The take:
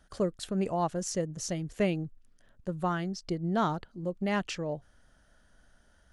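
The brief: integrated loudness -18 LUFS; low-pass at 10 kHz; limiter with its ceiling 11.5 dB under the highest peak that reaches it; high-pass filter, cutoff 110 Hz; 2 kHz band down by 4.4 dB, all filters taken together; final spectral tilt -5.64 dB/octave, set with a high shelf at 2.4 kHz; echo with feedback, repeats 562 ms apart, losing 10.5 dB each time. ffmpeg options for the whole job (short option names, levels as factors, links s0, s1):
-af "highpass=110,lowpass=10000,equalizer=f=2000:t=o:g=-3.5,highshelf=f=2400:g=-4.5,alimiter=level_in=2:limit=0.0631:level=0:latency=1,volume=0.501,aecho=1:1:562|1124|1686:0.299|0.0896|0.0269,volume=11.2"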